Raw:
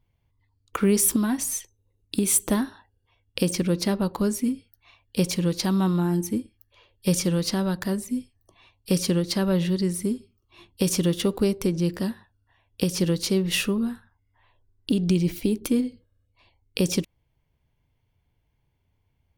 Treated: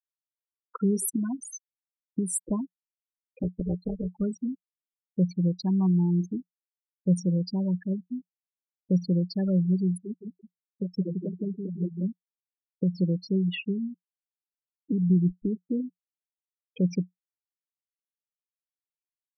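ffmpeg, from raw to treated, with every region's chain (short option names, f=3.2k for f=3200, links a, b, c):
-filter_complex "[0:a]asettb=1/sr,asplit=3[a][b][c];[a]atrim=end=3.424[d];[b]atrim=start=3.42:end=4.18,asetpts=PTS-STARTPTS,afade=t=in:d=0.004:c=qsin,afade=t=out:st=0.756:d=0.004:c=qsin,equalizer=f=260:w=5.4:g=11,acrusher=bits=4:mode=log:mix=0:aa=0.000001,tremolo=f=240:d=1[e];[c]atrim=start=4.176[f];[d][e]acrossfade=d=0.004:c1=hsin:c2=qsin[g];[g][f]acrossfade=d=0.004:c1=qsin:c2=hsin,asettb=1/sr,asplit=3[h][i][j];[h]atrim=end=9.974[k];[i]atrim=start=9.97:end=12.03,asetpts=PTS-STARTPTS,afade=t=in:d=0.004:c=qsin,afade=t=out:st=2.056:d=0.004:c=qsin,highpass=170,flanger=delay=0.8:depth=6.5:regen=14:speed=2:shape=sinusoidal,aecho=1:1:168|336|504|672|840:0.668|0.261|0.102|0.0396|0.0155,atrim=end_sample=90846[l];[j]atrim=start=12.026[m];[k][l]acrossfade=d=0.004:c1=hsin:c2=qsin[n];[n][m]acrossfade=d=0.004:c1=qsin:c2=hsin,afftfilt=real='re*gte(hypot(re,im),0.141)':imag='im*gte(hypot(re,im),0.141)':win_size=1024:overlap=0.75,equalizer=f=180:w=5.9:g=9,volume=-7dB"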